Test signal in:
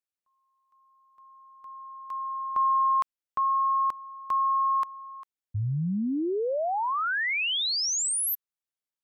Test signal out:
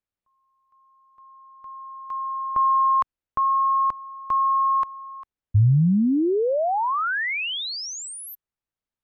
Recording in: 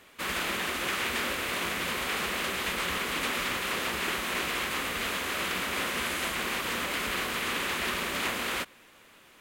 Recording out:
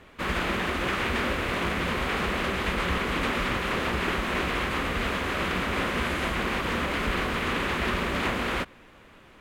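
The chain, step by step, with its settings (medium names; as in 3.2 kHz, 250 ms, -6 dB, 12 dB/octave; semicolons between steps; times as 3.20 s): low-pass 1.7 kHz 6 dB/octave; bass shelf 130 Hz +12 dB; trim +5.5 dB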